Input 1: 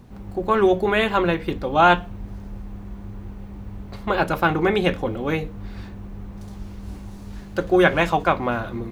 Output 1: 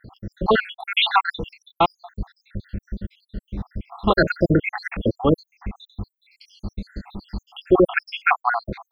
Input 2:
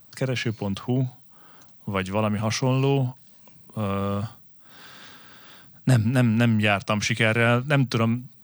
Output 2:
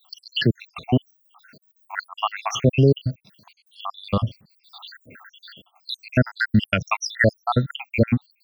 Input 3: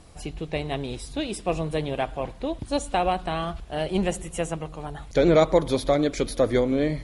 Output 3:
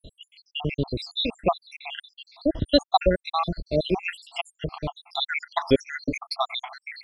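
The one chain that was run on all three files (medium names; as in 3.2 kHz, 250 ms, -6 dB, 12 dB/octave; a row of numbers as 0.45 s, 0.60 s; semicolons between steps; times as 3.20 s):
random holes in the spectrogram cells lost 84%; resonant high shelf 6 kHz -11.5 dB, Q 3; loudness maximiser +13.5 dB; peak normalisation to -6 dBFS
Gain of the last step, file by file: -5.0 dB, -5.0 dB, -5.0 dB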